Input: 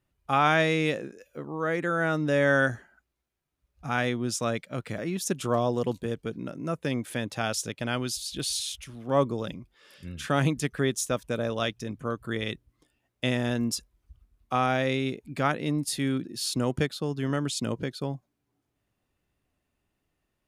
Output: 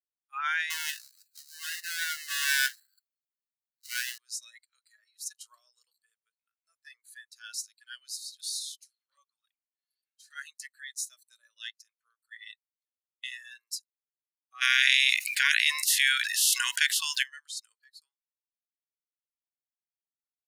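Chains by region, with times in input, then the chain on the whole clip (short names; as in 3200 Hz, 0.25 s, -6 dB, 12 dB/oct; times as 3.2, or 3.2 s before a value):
0.7–4.18 half-waves squared off + bell 370 Hz -15 dB 0.75 oct + mismatched tape noise reduction encoder only
9.11–10.35 bell 360 Hz -6 dB 1.3 oct + envelope flanger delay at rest 6.7 ms, full sweep at -21.5 dBFS
14.6–17.22 spectral limiter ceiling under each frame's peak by 21 dB + HPF 960 Hz 24 dB/oct + fast leveller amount 70%
whole clip: steep high-pass 1300 Hz 36 dB/oct; spectral noise reduction 22 dB; three-band expander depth 40%; gain -3.5 dB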